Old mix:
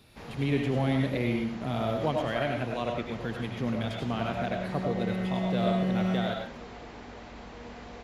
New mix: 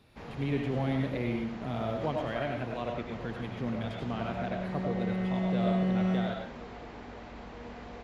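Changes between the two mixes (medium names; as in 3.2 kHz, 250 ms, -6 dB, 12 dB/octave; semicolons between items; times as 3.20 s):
speech -3.5 dB; master: add treble shelf 4.3 kHz -8.5 dB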